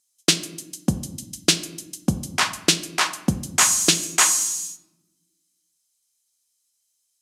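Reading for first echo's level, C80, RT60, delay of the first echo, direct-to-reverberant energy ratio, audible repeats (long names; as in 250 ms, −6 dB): no echo audible, 16.0 dB, 0.95 s, no echo audible, 10.5 dB, no echo audible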